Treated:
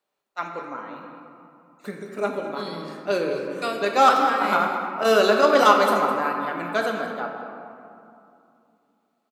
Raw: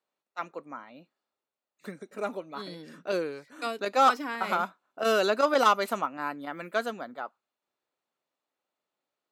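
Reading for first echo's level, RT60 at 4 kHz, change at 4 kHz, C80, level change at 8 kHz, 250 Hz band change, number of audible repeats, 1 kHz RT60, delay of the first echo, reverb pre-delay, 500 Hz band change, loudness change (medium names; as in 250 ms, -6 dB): -13.5 dB, 1.2 s, +6.0 dB, 4.0 dB, +5.5 dB, +8.0 dB, 1, 2.6 s, 208 ms, 5 ms, +7.5 dB, +6.5 dB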